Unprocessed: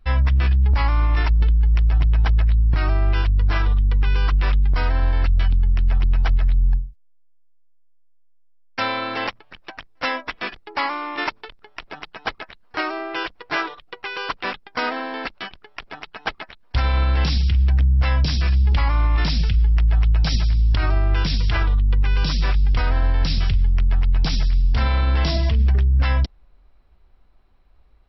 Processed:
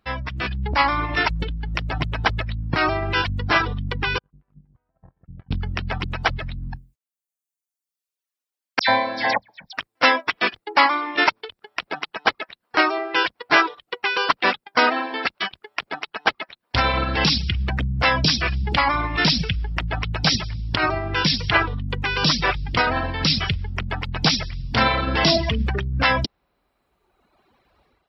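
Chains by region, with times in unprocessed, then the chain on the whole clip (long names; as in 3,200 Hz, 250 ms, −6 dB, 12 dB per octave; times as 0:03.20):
0:04.18–0:05.51: low-pass filter 1,100 Hz + noise gate −12 dBFS, range −48 dB + low-shelf EQ 95 Hz +8.5 dB
0:08.79–0:09.73: parametric band 270 Hz +4.5 dB 2.9 octaves + phaser with its sweep stopped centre 1,900 Hz, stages 8 + all-pass dispersion lows, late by 91 ms, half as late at 2,600 Hz
whole clip: reverb reduction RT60 1.4 s; Bessel high-pass filter 190 Hz, order 2; automatic gain control gain up to 10.5 dB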